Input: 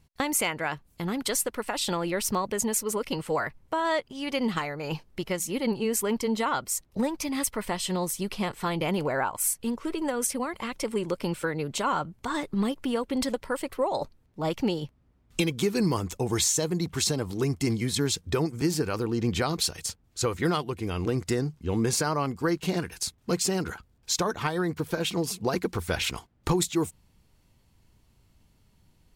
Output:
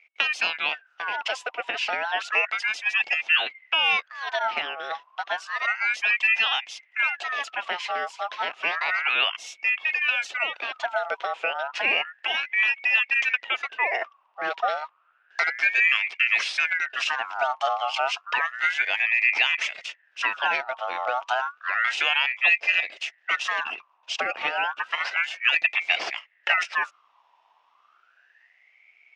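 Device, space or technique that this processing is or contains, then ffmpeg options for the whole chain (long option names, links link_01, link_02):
voice changer toy: -af "aeval=exprs='val(0)*sin(2*PI*1600*n/s+1600*0.4/0.31*sin(2*PI*0.31*n/s))':channel_layout=same,highpass=550,equalizer=frequency=690:width_type=q:width=4:gain=6,equalizer=frequency=1100:width_type=q:width=4:gain=-3,equalizer=frequency=2700:width_type=q:width=4:gain=10,equalizer=frequency=4300:width_type=q:width=4:gain=-6,lowpass=frequency=4700:width=0.5412,lowpass=frequency=4700:width=1.3066,volume=3.5dB"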